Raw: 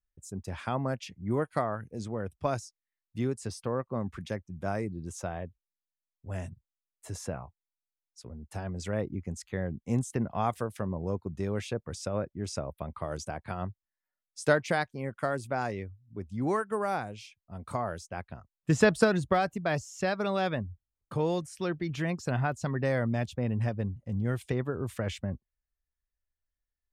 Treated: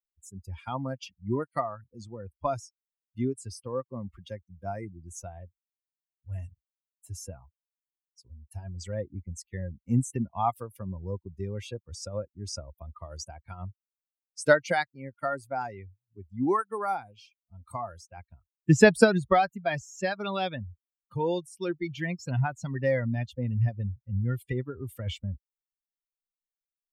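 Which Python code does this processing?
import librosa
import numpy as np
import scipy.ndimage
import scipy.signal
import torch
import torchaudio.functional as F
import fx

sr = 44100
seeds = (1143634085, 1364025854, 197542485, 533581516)

y = fx.bin_expand(x, sr, power=2.0)
y = y * librosa.db_to_amplitude(7.5)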